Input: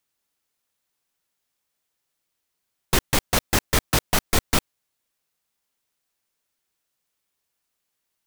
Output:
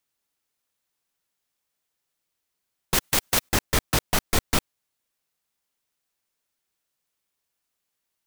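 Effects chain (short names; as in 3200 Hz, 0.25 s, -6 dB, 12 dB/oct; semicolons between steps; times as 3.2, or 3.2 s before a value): 2.94–3.49 spectral compressor 2:1; gain -2 dB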